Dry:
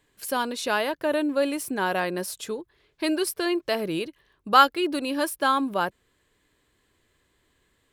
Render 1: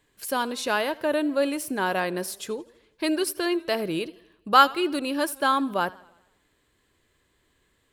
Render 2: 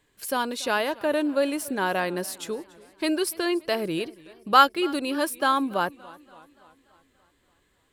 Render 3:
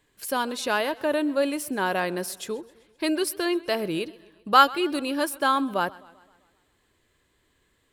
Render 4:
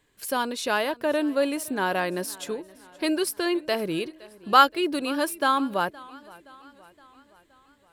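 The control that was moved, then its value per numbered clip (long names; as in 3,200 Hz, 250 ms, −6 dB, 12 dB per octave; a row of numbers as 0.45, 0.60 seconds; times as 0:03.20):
feedback echo with a swinging delay time, delay time: 83, 287, 130, 519 milliseconds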